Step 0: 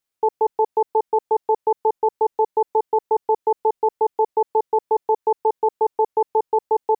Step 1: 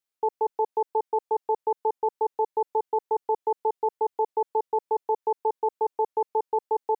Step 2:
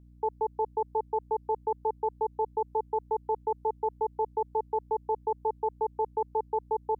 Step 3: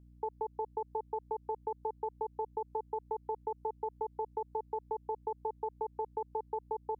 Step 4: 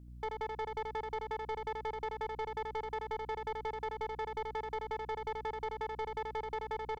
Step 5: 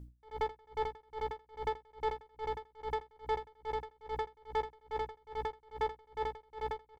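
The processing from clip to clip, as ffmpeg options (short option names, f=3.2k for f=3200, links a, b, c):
-af "lowshelf=f=150:g=-10,volume=-5.5dB"
-af "aeval=exprs='val(0)+0.00355*(sin(2*PI*60*n/s)+sin(2*PI*2*60*n/s)/2+sin(2*PI*3*60*n/s)/3+sin(2*PI*4*60*n/s)/4+sin(2*PI*5*60*n/s)/5)':c=same,volume=-4dB"
-af "acompressor=threshold=-29dB:ratio=6,volume=-3.5dB"
-af "asoftclip=type=tanh:threshold=-39dB,aecho=1:1:82:0.631,volume=5.5dB"
-filter_complex "[0:a]asplit=2[a][b];[b]adelay=14,volume=-8.5dB[c];[a][c]amix=inputs=2:normalize=0,aeval=exprs='val(0)*pow(10,-32*(0.5-0.5*cos(2*PI*2.4*n/s))/20)':c=same,volume=5dB"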